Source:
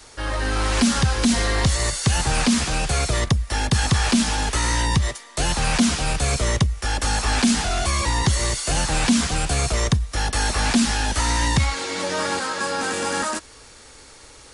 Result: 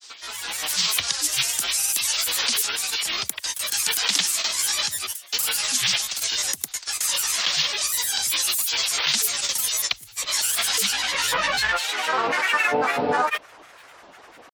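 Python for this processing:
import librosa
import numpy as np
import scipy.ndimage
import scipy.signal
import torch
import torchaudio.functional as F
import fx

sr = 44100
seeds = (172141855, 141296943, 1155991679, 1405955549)

y = fx.filter_sweep_bandpass(x, sr, from_hz=6000.0, to_hz=950.0, start_s=10.1, end_s=13.02, q=1.2)
y = fx.granulator(y, sr, seeds[0], grain_ms=100.0, per_s=20.0, spray_ms=100.0, spread_st=12)
y = y * librosa.db_to_amplitude(8.0)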